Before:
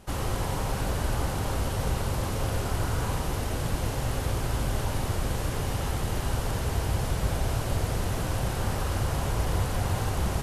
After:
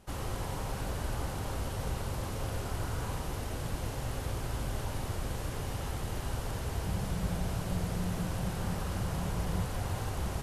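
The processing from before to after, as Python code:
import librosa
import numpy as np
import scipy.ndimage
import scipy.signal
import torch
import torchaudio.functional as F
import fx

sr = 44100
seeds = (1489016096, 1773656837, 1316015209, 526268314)

y = fx.peak_eq(x, sr, hz=180.0, db=13.5, octaves=0.26, at=(6.83, 9.65))
y = y * 10.0 ** (-7.0 / 20.0)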